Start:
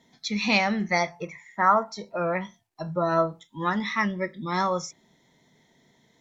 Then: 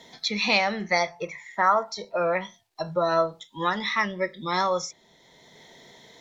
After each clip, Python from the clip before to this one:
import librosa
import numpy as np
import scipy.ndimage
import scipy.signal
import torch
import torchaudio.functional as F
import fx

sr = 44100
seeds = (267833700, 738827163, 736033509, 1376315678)

y = fx.graphic_eq(x, sr, hz=(125, 250, 500, 4000), db=(-5, -7, 4, 6))
y = fx.band_squash(y, sr, depth_pct=40)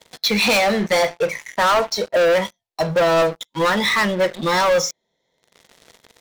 y = fx.peak_eq(x, sr, hz=520.0, db=8.0, octaves=0.38)
y = fx.leveller(y, sr, passes=5)
y = y * 10.0 ** (-6.5 / 20.0)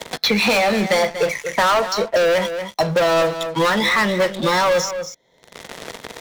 y = x + 10.0 ** (-13.0 / 20.0) * np.pad(x, (int(236 * sr / 1000.0), 0))[:len(x)]
y = fx.band_squash(y, sr, depth_pct=70)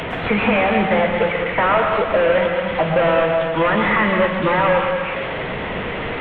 y = fx.delta_mod(x, sr, bps=16000, step_db=-20.0)
y = fx.rev_plate(y, sr, seeds[0], rt60_s=1.2, hf_ratio=0.5, predelay_ms=100, drr_db=4.0)